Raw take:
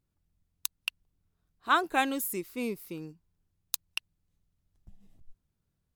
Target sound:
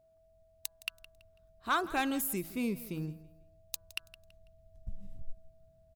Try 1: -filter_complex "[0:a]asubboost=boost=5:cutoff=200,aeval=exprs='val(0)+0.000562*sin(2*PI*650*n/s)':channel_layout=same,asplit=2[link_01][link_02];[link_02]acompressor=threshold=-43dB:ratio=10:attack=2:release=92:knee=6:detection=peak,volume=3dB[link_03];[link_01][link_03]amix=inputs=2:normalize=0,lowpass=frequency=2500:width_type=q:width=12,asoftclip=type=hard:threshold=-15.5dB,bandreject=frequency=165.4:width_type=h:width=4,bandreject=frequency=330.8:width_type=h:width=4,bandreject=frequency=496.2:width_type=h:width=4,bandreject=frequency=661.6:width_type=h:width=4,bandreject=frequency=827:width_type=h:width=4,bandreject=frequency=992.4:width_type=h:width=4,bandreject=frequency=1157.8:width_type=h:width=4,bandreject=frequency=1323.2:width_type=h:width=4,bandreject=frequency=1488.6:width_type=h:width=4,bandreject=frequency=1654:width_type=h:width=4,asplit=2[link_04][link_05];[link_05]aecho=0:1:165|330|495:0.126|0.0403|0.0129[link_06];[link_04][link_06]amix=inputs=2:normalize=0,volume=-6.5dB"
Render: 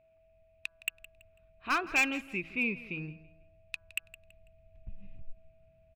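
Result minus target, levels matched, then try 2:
downward compressor: peak gain reduction +10 dB; 2,000 Hz band +5.0 dB
-filter_complex "[0:a]asubboost=boost=5:cutoff=200,aeval=exprs='val(0)+0.000562*sin(2*PI*650*n/s)':channel_layout=same,asplit=2[link_01][link_02];[link_02]acompressor=threshold=-32dB:ratio=10:attack=2:release=92:knee=6:detection=peak,volume=3dB[link_03];[link_01][link_03]amix=inputs=2:normalize=0,asoftclip=type=hard:threshold=-15.5dB,bandreject=frequency=165.4:width_type=h:width=4,bandreject=frequency=330.8:width_type=h:width=4,bandreject=frequency=496.2:width_type=h:width=4,bandreject=frequency=661.6:width_type=h:width=4,bandreject=frequency=827:width_type=h:width=4,bandreject=frequency=992.4:width_type=h:width=4,bandreject=frequency=1157.8:width_type=h:width=4,bandreject=frequency=1323.2:width_type=h:width=4,bandreject=frequency=1488.6:width_type=h:width=4,bandreject=frequency=1654:width_type=h:width=4,asplit=2[link_04][link_05];[link_05]aecho=0:1:165|330|495:0.126|0.0403|0.0129[link_06];[link_04][link_06]amix=inputs=2:normalize=0,volume=-6.5dB"

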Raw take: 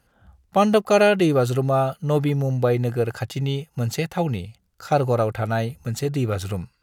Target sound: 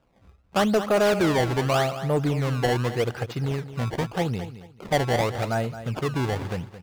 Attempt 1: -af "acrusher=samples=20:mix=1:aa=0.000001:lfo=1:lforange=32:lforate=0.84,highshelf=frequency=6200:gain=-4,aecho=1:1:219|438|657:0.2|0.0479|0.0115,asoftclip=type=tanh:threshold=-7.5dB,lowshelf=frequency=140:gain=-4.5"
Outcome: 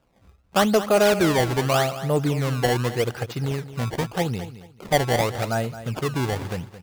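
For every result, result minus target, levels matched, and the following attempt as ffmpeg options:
soft clipping: distortion −9 dB; 8,000 Hz band +4.0 dB
-af "acrusher=samples=20:mix=1:aa=0.000001:lfo=1:lforange=32:lforate=0.84,highshelf=frequency=6200:gain=-4,aecho=1:1:219|438|657:0.2|0.0479|0.0115,asoftclip=type=tanh:threshold=-14.5dB,lowshelf=frequency=140:gain=-4.5"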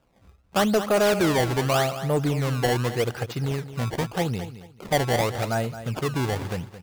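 8,000 Hz band +4.0 dB
-af "acrusher=samples=20:mix=1:aa=0.000001:lfo=1:lforange=32:lforate=0.84,highshelf=frequency=6200:gain=-12,aecho=1:1:219|438|657:0.2|0.0479|0.0115,asoftclip=type=tanh:threshold=-14.5dB,lowshelf=frequency=140:gain=-4.5"

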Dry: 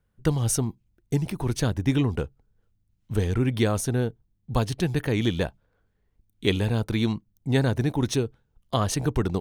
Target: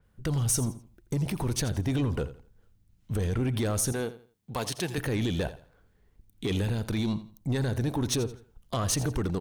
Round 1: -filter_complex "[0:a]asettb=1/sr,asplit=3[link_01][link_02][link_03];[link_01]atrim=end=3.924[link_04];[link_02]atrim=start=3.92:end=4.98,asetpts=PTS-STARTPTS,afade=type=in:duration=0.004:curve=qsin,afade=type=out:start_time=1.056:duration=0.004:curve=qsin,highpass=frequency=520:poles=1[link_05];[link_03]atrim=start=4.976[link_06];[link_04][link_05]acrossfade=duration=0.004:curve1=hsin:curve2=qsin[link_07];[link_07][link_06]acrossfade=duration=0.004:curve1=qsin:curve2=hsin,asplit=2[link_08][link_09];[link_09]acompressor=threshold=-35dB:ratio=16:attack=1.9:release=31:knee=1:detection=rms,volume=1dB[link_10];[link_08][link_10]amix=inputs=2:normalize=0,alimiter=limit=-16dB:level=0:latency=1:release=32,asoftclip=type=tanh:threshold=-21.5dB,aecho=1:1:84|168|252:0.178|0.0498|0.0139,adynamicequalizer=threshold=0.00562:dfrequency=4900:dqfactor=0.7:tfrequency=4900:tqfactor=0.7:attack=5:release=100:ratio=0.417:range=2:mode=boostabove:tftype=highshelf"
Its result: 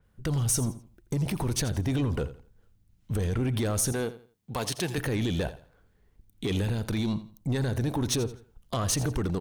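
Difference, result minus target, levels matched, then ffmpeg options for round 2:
downward compressor: peak gain reduction −8 dB
-filter_complex "[0:a]asettb=1/sr,asplit=3[link_01][link_02][link_03];[link_01]atrim=end=3.924[link_04];[link_02]atrim=start=3.92:end=4.98,asetpts=PTS-STARTPTS,afade=type=in:duration=0.004:curve=qsin,afade=type=out:start_time=1.056:duration=0.004:curve=qsin,highpass=frequency=520:poles=1[link_05];[link_03]atrim=start=4.976[link_06];[link_04][link_05]acrossfade=duration=0.004:curve1=hsin:curve2=qsin[link_07];[link_07][link_06]acrossfade=duration=0.004:curve1=qsin:curve2=hsin,asplit=2[link_08][link_09];[link_09]acompressor=threshold=-43.5dB:ratio=16:attack=1.9:release=31:knee=1:detection=rms,volume=1dB[link_10];[link_08][link_10]amix=inputs=2:normalize=0,alimiter=limit=-16dB:level=0:latency=1:release=32,asoftclip=type=tanh:threshold=-21.5dB,aecho=1:1:84|168|252:0.178|0.0498|0.0139,adynamicequalizer=threshold=0.00562:dfrequency=4900:dqfactor=0.7:tfrequency=4900:tqfactor=0.7:attack=5:release=100:ratio=0.417:range=2:mode=boostabove:tftype=highshelf"

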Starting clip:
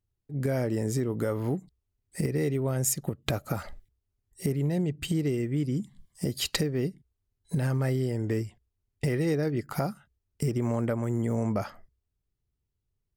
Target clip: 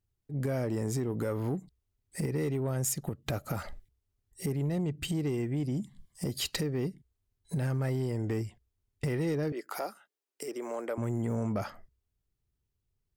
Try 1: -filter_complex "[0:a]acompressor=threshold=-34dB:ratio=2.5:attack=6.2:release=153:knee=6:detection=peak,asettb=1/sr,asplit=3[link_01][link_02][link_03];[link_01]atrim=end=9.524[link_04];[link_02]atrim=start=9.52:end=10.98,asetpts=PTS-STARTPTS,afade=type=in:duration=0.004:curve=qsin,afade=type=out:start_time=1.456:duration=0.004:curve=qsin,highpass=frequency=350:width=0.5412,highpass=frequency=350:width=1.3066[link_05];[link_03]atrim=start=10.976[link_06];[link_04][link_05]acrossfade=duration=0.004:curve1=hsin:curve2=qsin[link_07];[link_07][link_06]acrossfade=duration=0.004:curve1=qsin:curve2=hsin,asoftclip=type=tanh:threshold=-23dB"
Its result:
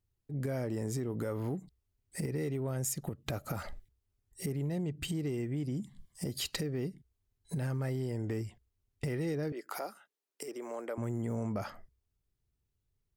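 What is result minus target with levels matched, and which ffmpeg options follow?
downward compressor: peak gain reduction +5 dB
-filter_complex "[0:a]acompressor=threshold=-26dB:ratio=2.5:attack=6.2:release=153:knee=6:detection=peak,asettb=1/sr,asplit=3[link_01][link_02][link_03];[link_01]atrim=end=9.524[link_04];[link_02]atrim=start=9.52:end=10.98,asetpts=PTS-STARTPTS,afade=type=in:duration=0.004:curve=qsin,afade=type=out:start_time=1.456:duration=0.004:curve=qsin,highpass=frequency=350:width=0.5412,highpass=frequency=350:width=1.3066[link_05];[link_03]atrim=start=10.976[link_06];[link_04][link_05]acrossfade=duration=0.004:curve1=hsin:curve2=qsin[link_07];[link_07][link_06]acrossfade=duration=0.004:curve1=qsin:curve2=hsin,asoftclip=type=tanh:threshold=-23dB"

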